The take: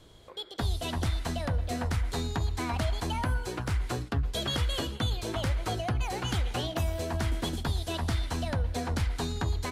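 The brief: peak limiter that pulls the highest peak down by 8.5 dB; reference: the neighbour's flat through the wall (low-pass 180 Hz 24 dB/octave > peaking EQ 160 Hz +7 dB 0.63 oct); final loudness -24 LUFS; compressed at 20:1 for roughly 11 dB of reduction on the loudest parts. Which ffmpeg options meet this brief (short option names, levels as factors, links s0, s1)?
-af "acompressor=threshold=0.0178:ratio=20,alimiter=level_in=2.11:limit=0.0631:level=0:latency=1,volume=0.473,lowpass=f=180:w=0.5412,lowpass=f=180:w=1.3066,equalizer=f=160:t=o:w=0.63:g=7,volume=8.91"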